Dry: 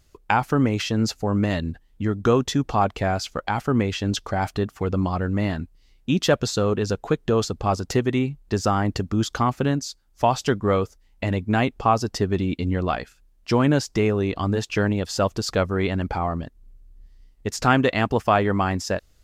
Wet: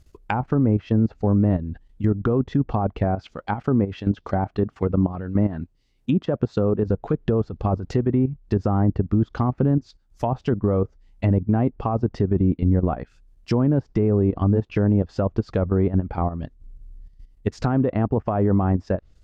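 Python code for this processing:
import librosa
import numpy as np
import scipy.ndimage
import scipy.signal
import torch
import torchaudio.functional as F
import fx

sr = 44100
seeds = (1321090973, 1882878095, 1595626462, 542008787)

y = fx.highpass(x, sr, hz=120.0, slope=6, at=(3.04, 6.88))
y = fx.level_steps(y, sr, step_db=12)
y = fx.env_lowpass_down(y, sr, base_hz=910.0, full_db=-22.0)
y = fx.low_shelf(y, sr, hz=430.0, db=8.5)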